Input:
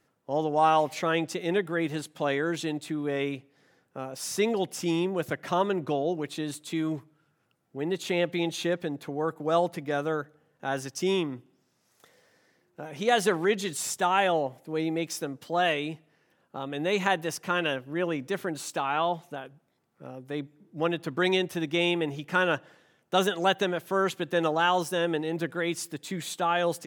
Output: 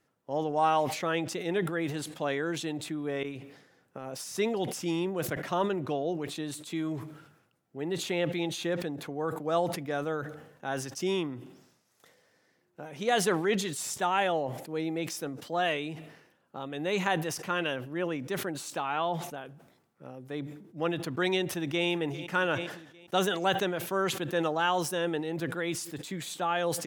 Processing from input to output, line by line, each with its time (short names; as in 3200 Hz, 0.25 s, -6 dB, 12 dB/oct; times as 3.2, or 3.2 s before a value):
3.23–4.37 negative-ratio compressor -38 dBFS
21.42–21.86 echo throw 0.4 s, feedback 55%, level -15 dB
whole clip: sustainer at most 71 dB/s; gain -3.5 dB